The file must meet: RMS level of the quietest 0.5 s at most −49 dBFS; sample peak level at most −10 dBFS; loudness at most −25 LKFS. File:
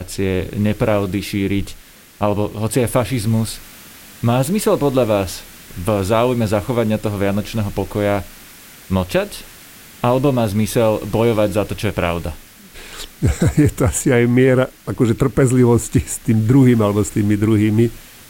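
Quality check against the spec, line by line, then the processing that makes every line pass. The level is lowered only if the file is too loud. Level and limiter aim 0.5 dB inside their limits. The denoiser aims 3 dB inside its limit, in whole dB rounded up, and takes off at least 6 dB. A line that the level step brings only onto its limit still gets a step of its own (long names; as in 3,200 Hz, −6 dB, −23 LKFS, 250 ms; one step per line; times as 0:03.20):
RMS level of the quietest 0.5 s −41 dBFS: out of spec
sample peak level −2.5 dBFS: out of spec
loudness −17.5 LKFS: out of spec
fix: broadband denoise 6 dB, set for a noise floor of −41 dBFS
level −8 dB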